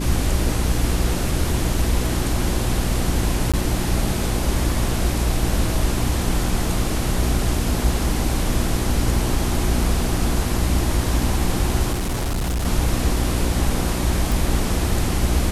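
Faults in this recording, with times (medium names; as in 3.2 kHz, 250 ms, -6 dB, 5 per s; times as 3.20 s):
hum 60 Hz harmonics 6 -24 dBFS
3.52–3.54 s: dropout 16 ms
11.92–12.66 s: clipped -19.5 dBFS
14.32 s: pop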